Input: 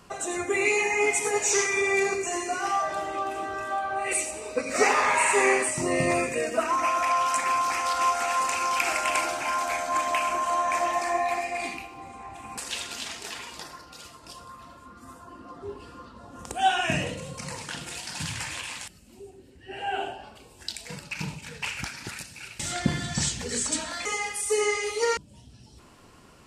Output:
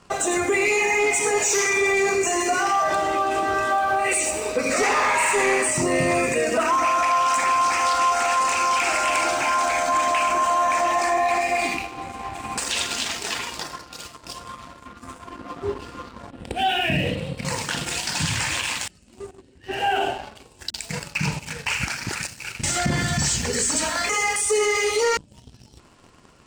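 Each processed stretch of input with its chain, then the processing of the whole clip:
16.3–17.45 high shelf 5200 Hz -8 dB + fixed phaser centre 2800 Hz, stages 4
20.7–24.36 bell 3600 Hz -6 dB 0.37 oct + bands offset in time lows, highs 40 ms, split 300 Hz
whole clip: steep low-pass 9400 Hz; sample leveller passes 2; limiter -17 dBFS; gain +3 dB

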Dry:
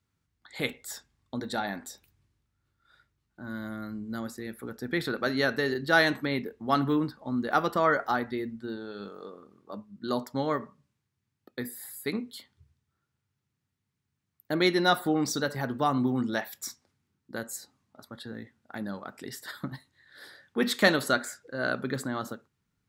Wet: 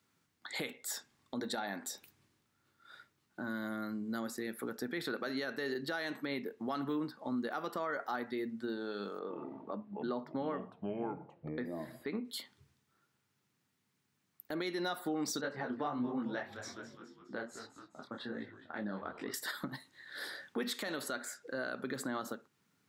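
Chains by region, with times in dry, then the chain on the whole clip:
9.19–12.25 air absorption 360 m + echoes that change speed 94 ms, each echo -5 st, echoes 2, each echo -6 dB
15.41–19.34 LPF 3000 Hz + frequency-shifting echo 0.208 s, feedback 51%, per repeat -120 Hz, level -15 dB + detuned doubles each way 45 cents
whole clip: HPF 210 Hz 12 dB/oct; compressor 2.5:1, threshold -46 dBFS; limiter -34 dBFS; gain +7 dB

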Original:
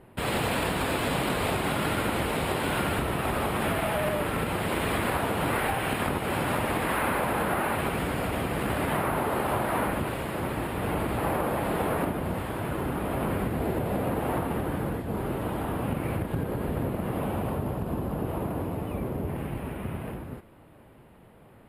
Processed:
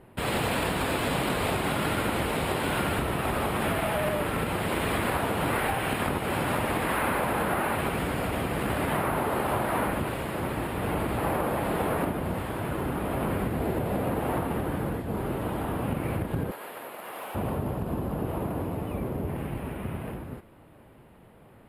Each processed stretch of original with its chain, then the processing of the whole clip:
16.51–17.35 HPF 680 Hz + tilt shelf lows -3 dB, about 1300 Hz + overloaded stage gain 32 dB
whole clip: dry

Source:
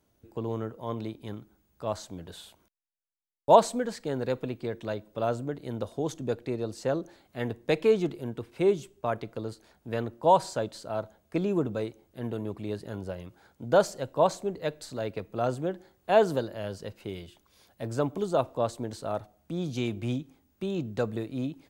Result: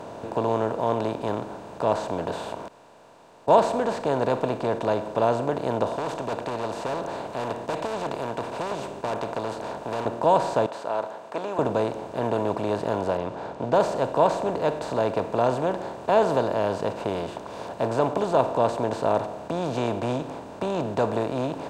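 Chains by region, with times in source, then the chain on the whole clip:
5.96–10.06 overloaded stage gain 28 dB + spectral compressor 2:1
10.66–11.59 HPF 1100 Hz + high shelf 2100 Hz -12 dB
13.17–13.81 low-pass opened by the level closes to 2800 Hz, open at -18.5 dBFS + bell 1600 Hz -4 dB 2 oct
whole clip: per-bin compression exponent 0.4; LPF 3400 Hz 6 dB/oct; gain -2 dB

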